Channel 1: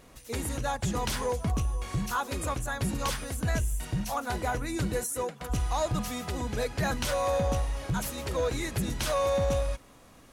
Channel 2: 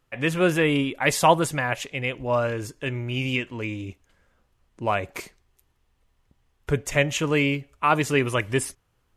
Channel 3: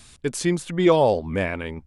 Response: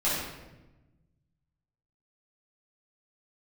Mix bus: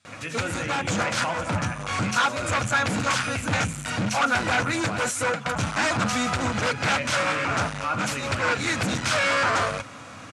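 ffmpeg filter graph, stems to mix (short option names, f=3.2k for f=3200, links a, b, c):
-filter_complex "[0:a]aeval=exprs='0.0944*sin(PI/2*2.51*val(0)/0.0944)':c=same,adelay=50,volume=1.5dB[a];[1:a]volume=-14dB,asplit=3[b][c][d];[c]volume=-14dB[e];[2:a]volume=-20dB,asplit=2[f][g];[g]volume=-11dB[h];[d]apad=whole_len=457335[i];[a][i]sidechaincompress=threshold=-37dB:ratio=8:attack=8.4:release=147[j];[3:a]atrim=start_sample=2205[k];[e][h]amix=inputs=2:normalize=0[l];[l][k]afir=irnorm=-1:irlink=0[m];[j][b][f][m]amix=inputs=4:normalize=0,asoftclip=type=hard:threshold=-21.5dB,highpass=f=100:w=0.5412,highpass=f=100:w=1.3066,equalizer=f=100:t=q:w=4:g=8,equalizer=f=160:t=q:w=4:g=-4,equalizer=f=390:t=q:w=4:g=-10,equalizer=f=1.4k:t=q:w=4:g=9,equalizer=f=2.4k:t=q:w=4:g=5,lowpass=f=8.3k:w=0.5412,lowpass=f=8.3k:w=1.3066"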